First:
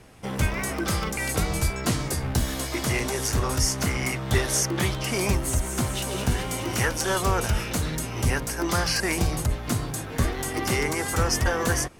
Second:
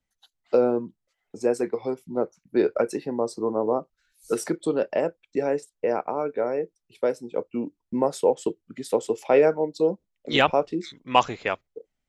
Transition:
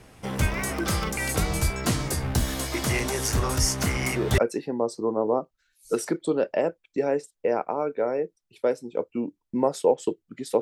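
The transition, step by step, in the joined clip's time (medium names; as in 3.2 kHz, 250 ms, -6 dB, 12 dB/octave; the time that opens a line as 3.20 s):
first
3.98 s: add second from 2.37 s 0.40 s -7.5 dB
4.38 s: go over to second from 2.77 s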